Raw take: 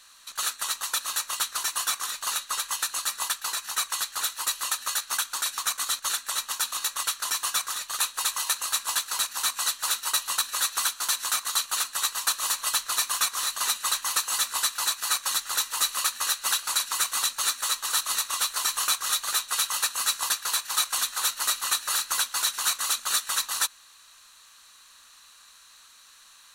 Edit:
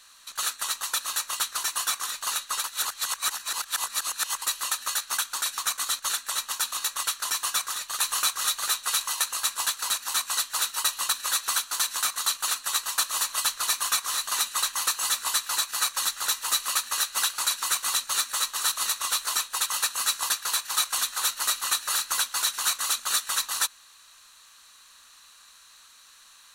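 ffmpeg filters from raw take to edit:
-filter_complex "[0:a]asplit=7[a][b][c][d][e][f][g];[a]atrim=end=2.642[h];[b]atrim=start=2.638:end=4.422,asetpts=PTS-STARTPTS,areverse[i];[c]atrim=start=4.418:end=8.042[j];[d]atrim=start=18.688:end=19.662[k];[e]atrim=start=8.298:end=18.692[l];[f]atrim=start=8.038:end=8.302[m];[g]atrim=start=19.658[n];[h][i]acrossfade=d=0.004:c1=hsin:c2=hsin[o];[o][j]acrossfade=d=0.004:c1=hsin:c2=hsin[p];[p][k]acrossfade=d=0.004:c1=hsin:c2=hsin[q];[q][l]acrossfade=d=0.004:c1=hsin:c2=hsin[r];[r][m]acrossfade=d=0.004:c1=hsin:c2=hsin[s];[s][n]acrossfade=d=0.004:c1=hsin:c2=hsin"

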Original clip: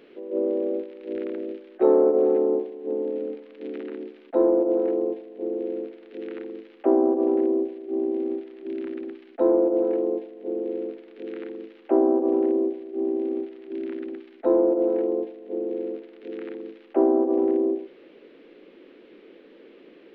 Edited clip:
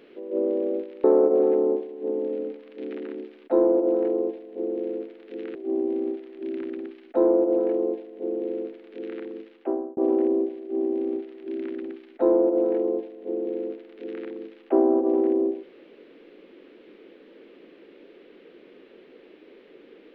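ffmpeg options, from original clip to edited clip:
-filter_complex "[0:a]asplit=4[a][b][c][d];[a]atrim=end=1.042[e];[b]atrim=start=1.868:end=6.382[f];[c]atrim=start=7.788:end=12.21,asetpts=PTS-STARTPTS,afade=t=out:st=3.842:d=0.58[g];[d]atrim=start=12.21,asetpts=PTS-STARTPTS,afade=t=in:d=0.004:c=hsin[h];[e][f]acrossfade=d=0.004:c1=hsin:c2=hsin[i];[g][h]concat=n=2:v=0:a=1[j];[i][j]acrossfade=d=0.004:c1=hsin:c2=hsin"

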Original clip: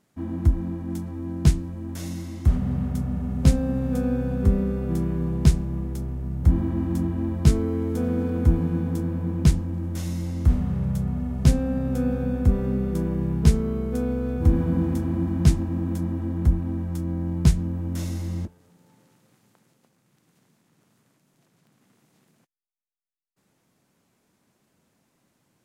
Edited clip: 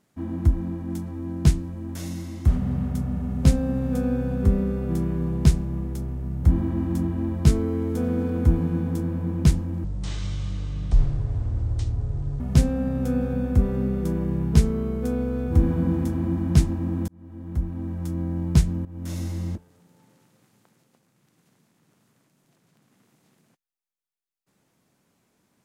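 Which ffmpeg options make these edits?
-filter_complex "[0:a]asplit=5[a][b][c][d][e];[a]atrim=end=9.844[f];[b]atrim=start=9.84:end=11.3,asetpts=PTS-STARTPTS,asetrate=25137,aresample=44100[g];[c]atrim=start=11.296:end=15.98,asetpts=PTS-STARTPTS,afade=t=out:st=4.68:d=0.004:c=hsin[h];[d]atrim=start=15.98:end=17.75,asetpts=PTS-STARTPTS,afade=t=in:d=1.06,afade=t=out:st=1.766:d=0.004:c=hsin:silence=0.158489[i];[e]atrim=start=17.75,asetpts=PTS-STARTPTS,afade=t=in:d=0.36:silence=0.158489[j];[f][g]acrossfade=d=0.004:c1=hsin:c2=hsin[k];[h][i][j]concat=n=3:v=0:a=1[l];[k][l]acrossfade=d=0.004:c1=hsin:c2=hsin"

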